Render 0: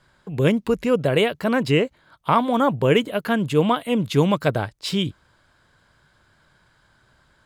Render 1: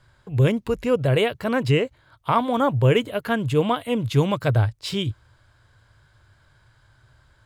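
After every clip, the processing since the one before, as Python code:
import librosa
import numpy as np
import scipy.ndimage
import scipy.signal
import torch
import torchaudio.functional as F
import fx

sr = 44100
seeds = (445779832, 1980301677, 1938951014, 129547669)

y = fx.low_shelf_res(x, sr, hz=140.0, db=6.0, q=3.0)
y = fx.hpss(y, sr, part='percussive', gain_db=-3)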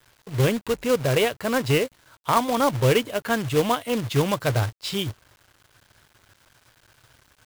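y = fx.low_shelf(x, sr, hz=170.0, db=-7.0)
y = fx.quant_companded(y, sr, bits=4)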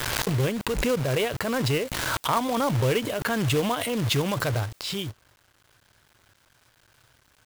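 y = fx.pre_swell(x, sr, db_per_s=21.0)
y = y * librosa.db_to_amplitude(-5.0)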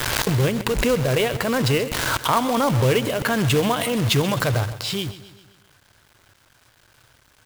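y = fx.echo_feedback(x, sr, ms=131, feedback_pct=53, wet_db=-15.0)
y = y * librosa.db_to_amplitude(4.5)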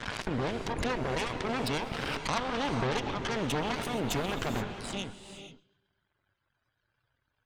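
y = fx.spec_topn(x, sr, count=64)
y = fx.cheby_harmonics(y, sr, harmonics=(3, 8), levels_db=(-12, -15), full_scale_db=-6.5)
y = fx.rev_gated(y, sr, seeds[0], gate_ms=500, shape='rising', drr_db=7.5)
y = y * librosa.db_to_amplitude(-8.5)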